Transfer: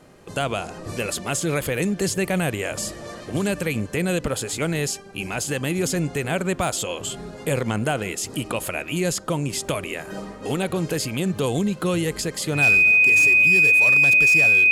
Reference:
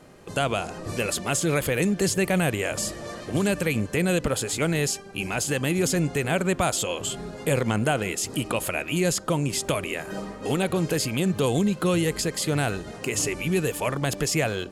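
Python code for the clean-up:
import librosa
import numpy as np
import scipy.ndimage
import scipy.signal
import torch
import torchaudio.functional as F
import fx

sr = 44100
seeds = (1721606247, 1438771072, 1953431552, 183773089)

y = fx.fix_declip(x, sr, threshold_db=-12.0)
y = fx.notch(y, sr, hz=2500.0, q=30.0)
y = fx.gain(y, sr, db=fx.steps((0.0, 0.0), (12.98, 3.5)))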